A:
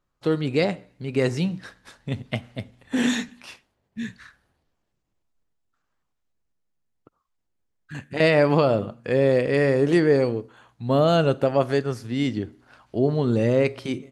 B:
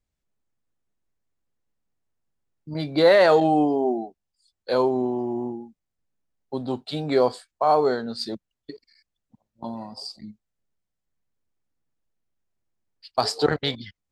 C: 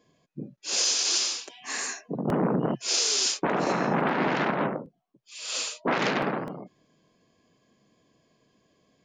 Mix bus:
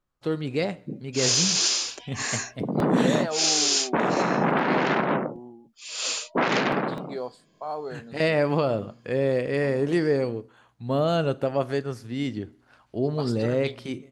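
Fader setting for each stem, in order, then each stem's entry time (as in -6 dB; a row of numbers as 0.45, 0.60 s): -4.5, -13.5, +2.5 dB; 0.00, 0.00, 0.50 s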